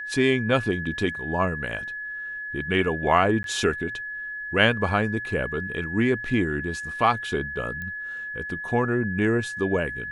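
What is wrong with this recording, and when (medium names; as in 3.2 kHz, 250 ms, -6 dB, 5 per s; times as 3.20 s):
whine 1.7 kHz -31 dBFS
3.43–3.44 s: dropout 12 ms
7.82 s: pop -22 dBFS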